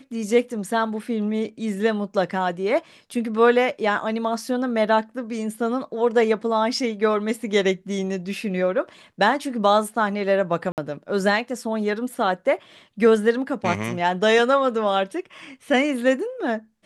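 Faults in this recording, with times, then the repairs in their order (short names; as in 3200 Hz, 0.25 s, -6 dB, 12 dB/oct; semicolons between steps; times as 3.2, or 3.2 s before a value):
10.72–10.78 gap 58 ms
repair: interpolate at 10.72, 58 ms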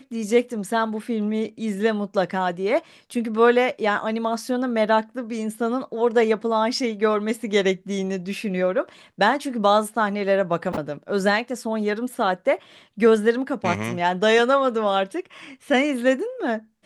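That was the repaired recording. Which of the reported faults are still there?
none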